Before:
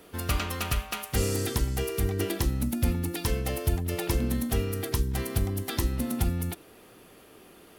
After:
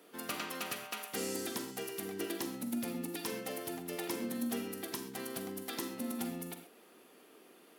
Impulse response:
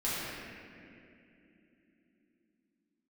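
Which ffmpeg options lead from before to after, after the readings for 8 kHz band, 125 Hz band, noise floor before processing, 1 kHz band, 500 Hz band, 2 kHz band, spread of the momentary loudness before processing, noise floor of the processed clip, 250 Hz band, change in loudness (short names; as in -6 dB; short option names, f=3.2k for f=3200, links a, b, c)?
-7.0 dB, -23.5 dB, -53 dBFS, -7.0 dB, -8.0 dB, -6.5 dB, 2 LU, -61 dBFS, -7.0 dB, -9.5 dB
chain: -filter_complex "[0:a]highpass=f=210:w=0.5412,highpass=f=210:w=1.3066,asplit=2[a][b];[1:a]atrim=start_sample=2205,atrim=end_sample=4410,adelay=42[c];[b][c]afir=irnorm=-1:irlink=0,volume=-11.5dB[d];[a][d]amix=inputs=2:normalize=0,volume=-7.5dB"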